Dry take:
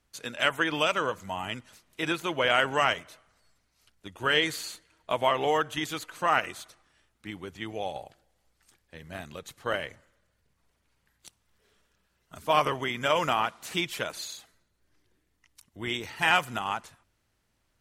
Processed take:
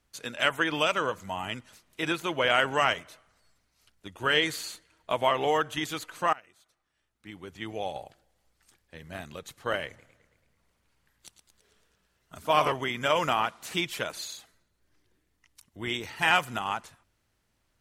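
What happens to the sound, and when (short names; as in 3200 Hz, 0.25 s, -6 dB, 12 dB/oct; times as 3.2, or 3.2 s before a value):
6.33–7.69 fade in quadratic, from -23.5 dB
9.87–12.72 warbling echo 0.11 s, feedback 61%, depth 165 cents, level -9.5 dB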